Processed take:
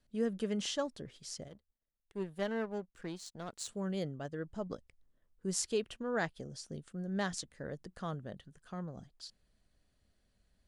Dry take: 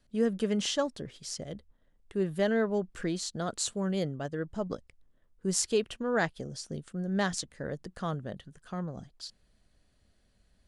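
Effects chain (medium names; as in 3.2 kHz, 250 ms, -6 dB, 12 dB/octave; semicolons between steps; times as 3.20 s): 1.48–3.69 s: power-law waveshaper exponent 1.4; trim -6 dB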